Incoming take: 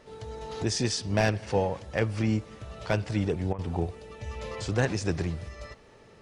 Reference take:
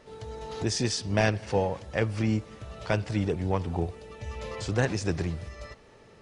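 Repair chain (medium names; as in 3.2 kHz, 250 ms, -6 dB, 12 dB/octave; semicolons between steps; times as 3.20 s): clip repair -13 dBFS; interpolate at 3.53 s, 55 ms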